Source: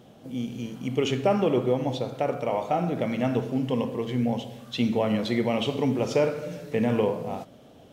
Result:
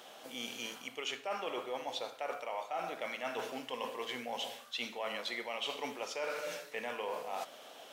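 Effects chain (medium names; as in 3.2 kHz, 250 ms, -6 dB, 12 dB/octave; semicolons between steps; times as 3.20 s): high-pass 950 Hz 12 dB/octave; reverse; compression 6:1, threshold -45 dBFS, peak gain reduction 18.5 dB; reverse; trim +8.5 dB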